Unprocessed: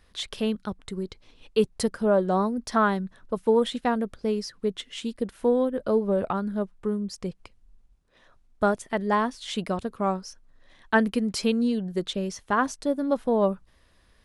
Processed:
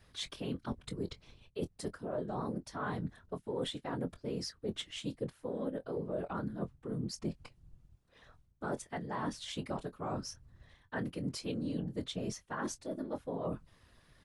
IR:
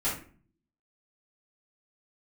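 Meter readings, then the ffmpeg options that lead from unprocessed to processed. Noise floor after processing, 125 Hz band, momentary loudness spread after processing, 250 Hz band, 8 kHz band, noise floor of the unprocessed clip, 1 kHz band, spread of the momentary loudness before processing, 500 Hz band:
-69 dBFS, -5.5 dB, 5 LU, -12.5 dB, -7.5 dB, -61 dBFS, -15.0 dB, 11 LU, -14.5 dB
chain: -filter_complex "[0:a]areverse,acompressor=threshold=-32dB:ratio=16,areverse,afftfilt=real='hypot(re,im)*cos(2*PI*random(0))':imag='hypot(re,im)*sin(2*PI*random(1))':win_size=512:overlap=0.75,asplit=2[a][b];[b]adelay=23,volume=-12.5dB[c];[a][c]amix=inputs=2:normalize=0,volume=3.5dB"

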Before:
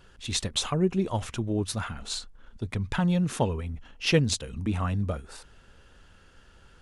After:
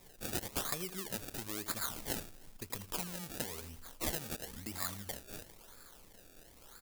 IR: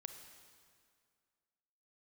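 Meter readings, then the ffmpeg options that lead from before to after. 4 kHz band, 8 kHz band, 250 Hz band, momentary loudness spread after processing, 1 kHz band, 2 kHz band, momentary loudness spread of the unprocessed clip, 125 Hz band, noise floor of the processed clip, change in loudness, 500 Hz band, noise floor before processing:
-11.5 dB, -5.5 dB, -17.5 dB, 19 LU, -10.5 dB, -9.5 dB, 11 LU, -20.0 dB, -59 dBFS, -11.0 dB, -15.0 dB, -56 dBFS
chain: -af "acompressor=threshold=-35dB:ratio=5,acrusher=bits=7:mode=log:mix=0:aa=0.000001,equalizer=f=83:w=0.39:g=-10.5,aecho=1:1:82|164|246|328:0.2|0.0898|0.0404|0.0182,acrusher=samples=29:mix=1:aa=0.000001:lfo=1:lforange=29:lforate=0.99,crystalizer=i=4.5:c=0,volume=-3dB"

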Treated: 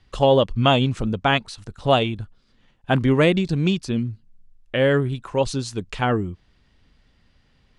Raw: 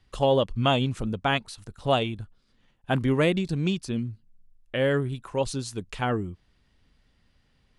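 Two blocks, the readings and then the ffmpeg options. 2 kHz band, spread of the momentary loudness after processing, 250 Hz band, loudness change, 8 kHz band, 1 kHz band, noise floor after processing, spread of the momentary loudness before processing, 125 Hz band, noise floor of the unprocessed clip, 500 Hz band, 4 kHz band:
+5.5 dB, 12 LU, +5.5 dB, +5.5 dB, +2.5 dB, +5.5 dB, -61 dBFS, 12 LU, +5.5 dB, -66 dBFS, +5.5 dB, +5.5 dB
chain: -af "lowpass=7.5k,volume=5.5dB"

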